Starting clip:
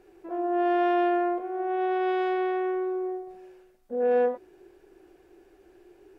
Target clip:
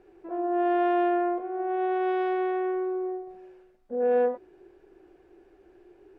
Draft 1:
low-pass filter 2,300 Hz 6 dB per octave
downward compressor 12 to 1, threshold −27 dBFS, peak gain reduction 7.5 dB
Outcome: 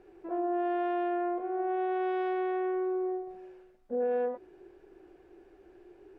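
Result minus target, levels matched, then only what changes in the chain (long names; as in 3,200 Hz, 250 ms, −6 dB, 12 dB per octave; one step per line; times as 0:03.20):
downward compressor: peak gain reduction +7.5 dB
remove: downward compressor 12 to 1, threshold −27 dBFS, peak gain reduction 7.5 dB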